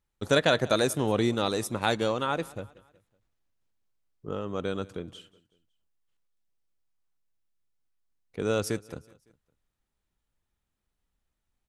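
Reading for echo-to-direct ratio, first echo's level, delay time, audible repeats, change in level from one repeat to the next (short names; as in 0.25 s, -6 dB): -21.0 dB, -22.0 dB, 0.186 s, 2, -7.0 dB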